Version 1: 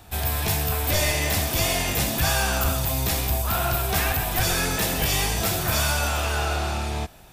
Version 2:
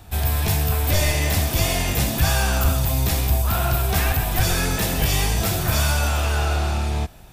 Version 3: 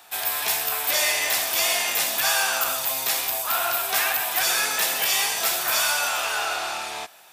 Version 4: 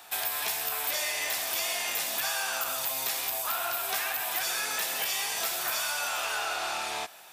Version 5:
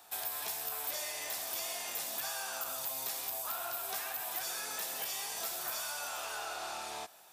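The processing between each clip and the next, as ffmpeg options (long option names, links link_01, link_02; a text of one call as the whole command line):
ffmpeg -i in.wav -af "lowshelf=frequency=200:gain=7" out.wav
ffmpeg -i in.wav -af "highpass=860,volume=3dB" out.wav
ffmpeg -i in.wav -af "acompressor=threshold=-28dB:ratio=6" out.wav
ffmpeg -i in.wav -af "equalizer=frequency=2300:width=0.89:gain=-6.5,volume=-6dB" out.wav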